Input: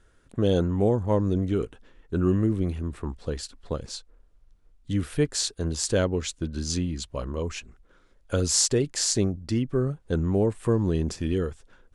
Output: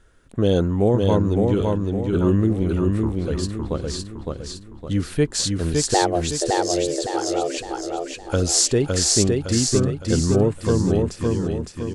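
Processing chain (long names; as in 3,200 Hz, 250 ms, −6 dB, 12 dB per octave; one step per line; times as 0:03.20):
fade-out on the ending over 1.39 s
0:05.94–0:07.58: frequency shifter +260 Hz
on a send: repeating echo 561 ms, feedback 43%, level −3 dB
on the sum: level +4 dB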